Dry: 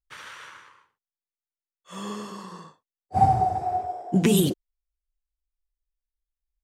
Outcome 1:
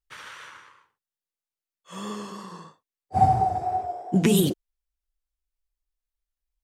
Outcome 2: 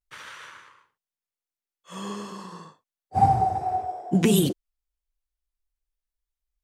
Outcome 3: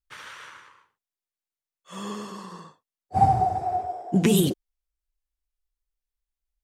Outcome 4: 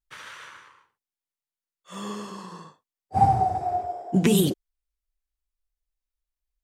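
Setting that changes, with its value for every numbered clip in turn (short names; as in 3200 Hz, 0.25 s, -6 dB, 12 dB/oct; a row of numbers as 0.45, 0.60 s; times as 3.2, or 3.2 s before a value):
vibrato, rate: 3, 0.35, 14, 0.71 Hz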